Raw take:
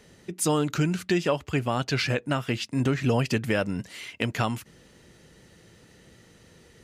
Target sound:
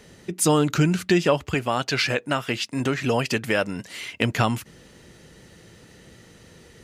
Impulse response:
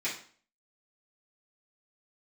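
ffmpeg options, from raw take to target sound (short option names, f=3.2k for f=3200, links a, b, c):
-filter_complex "[0:a]asettb=1/sr,asplit=3[a][b][c];[a]atrim=end=1.544[d];[b]atrim=start=1.54:end=3.9,asetpts=PTS-STARTPTS,afade=t=in:d=0.004:c=qsin,afade=t=out:st=2.356:d=0.004:c=qsin,lowshelf=f=250:g=-10.5[e];[c]atrim=start=3.896[f];[d][e]acrossfade=d=0.004:c1=hsin:c2=qsin[g];[g][f]acrossfade=d=0.004:c1=qsin:c2=hsin,volume=5dB"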